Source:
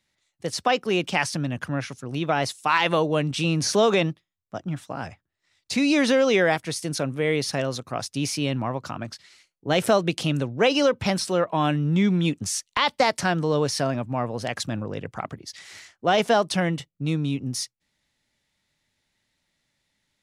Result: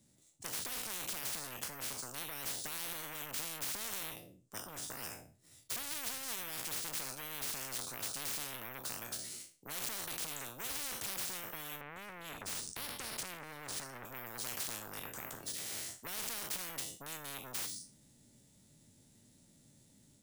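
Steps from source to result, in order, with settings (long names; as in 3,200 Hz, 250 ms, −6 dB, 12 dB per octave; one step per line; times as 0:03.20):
peak hold with a decay on every bin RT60 0.35 s
bad sample-rate conversion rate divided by 3×, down none, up hold
0:11.81–0:14.05: spectral tilt −3 dB per octave
brickwall limiter −16 dBFS, peak gain reduction 10.5 dB
octave-band graphic EQ 125/250/500/1,000/2,000/4,000/8,000 Hz +9/+9/+3/−5/−11/−5/+10 dB
soft clipping −20 dBFS, distortion −8 dB
automatic gain control gain up to 4.5 dB
every bin compressed towards the loudest bin 10 to 1
level −4 dB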